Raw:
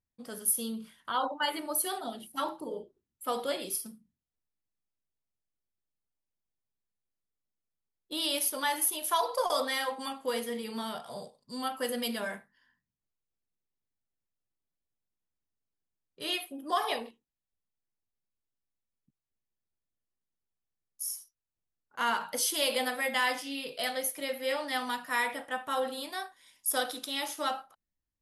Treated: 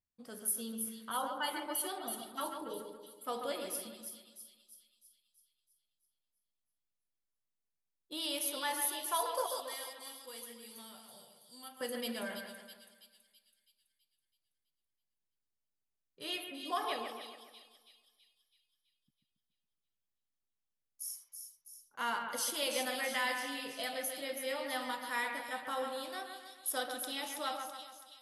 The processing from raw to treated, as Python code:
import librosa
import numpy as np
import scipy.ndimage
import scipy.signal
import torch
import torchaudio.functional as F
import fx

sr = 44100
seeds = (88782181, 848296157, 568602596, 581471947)

y = fx.pre_emphasis(x, sr, coefficient=0.8, at=(9.46, 11.81))
y = fx.echo_split(y, sr, split_hz=3000.0, low_ms=139, high_ms=328, feedback_pct=52, wet_db=-6.0)
y = F.gain(torch.from_numpy(y), -6.5).numpy()